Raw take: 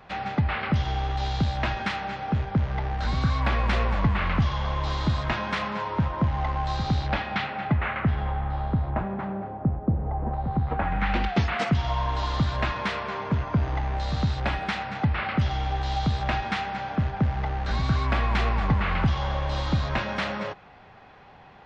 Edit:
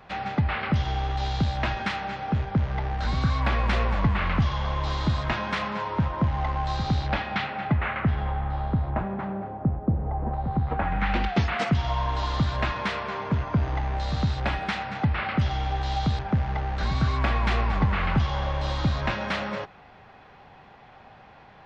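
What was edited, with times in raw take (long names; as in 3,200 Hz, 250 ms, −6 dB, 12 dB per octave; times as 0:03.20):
0:16.19–0:17.07: remove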